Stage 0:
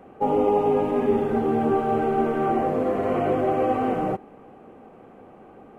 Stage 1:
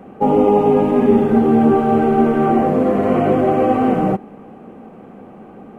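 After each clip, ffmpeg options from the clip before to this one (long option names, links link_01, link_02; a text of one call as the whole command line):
ffmpeg -i in.wav -af "equalizer=frequency=200:width_type=o:width=0.77:gain=8.5,volume=6dB" out.wav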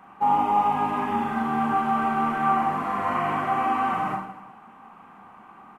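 ffmpeg -i in.wav -af "lowshelf=frequency=710:width_type=q:width=3:gain=-12,aecho=1:1:40|92|159.6|247.5|361.7:0.631|0.398|0.251|0.158|0.1,volume=-5dB" out.wav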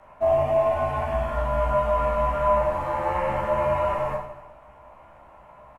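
ffmpeg -i in.wav -filter_complex "[0:a]afreqshift=-170,asplit=2[link_01][link_02];[link_02]adelay=15,volume=-4.5dB[link_03];[link_01][link_03]amix=inputs=2:normalize=0,volume=-2dB" out.wav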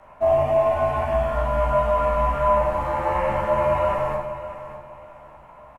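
ffmpeg -i in.wav -af "aecho=1:1:598|1196|1794:0.224|0.0627|0.0176,volume=2dB" out.wav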